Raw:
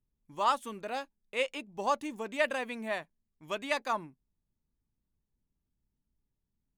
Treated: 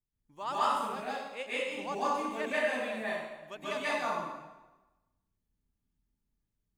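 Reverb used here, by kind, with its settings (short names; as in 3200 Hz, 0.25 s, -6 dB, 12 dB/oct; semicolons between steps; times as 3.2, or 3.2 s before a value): plate-style reverb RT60 1.1 s, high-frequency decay 0.85×, pre-delay 0.12 s, DRR -10 dB; gain -10 dB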